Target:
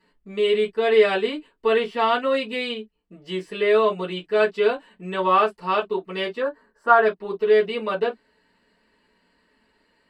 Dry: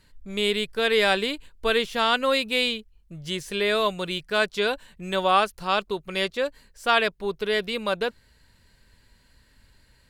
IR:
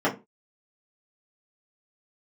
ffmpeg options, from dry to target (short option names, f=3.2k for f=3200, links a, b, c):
-filter_complex "[0:a]asettb=1/sr,asplit=3[a][b][c];[a]atrim=end=6.404[d];[b]atrim=start=6.4:end=7.06,asetpts=PTS-STARTPTS,afade=t=in:d=0.004:c=qsin,afade=t=out:st=0.656:d=0.004:c=qsin,highshelf=f=1.9k:t=q:w=3:g=-8[e];[c]atrim=start=7.056[f];[d][e]acrossfade=d=0.004:c1=hsin:c2=qsin[g];[g][f]acrossfade=d=0.004:c1=qsin:c2=hsin[h];[1:a]atrim=start_sample=2205,atrim=end_sample=3969,asetrate=66150,aresample=44100[i];[h][i]afir=irnorm=-1:irlink=0,volume=-12.5dB"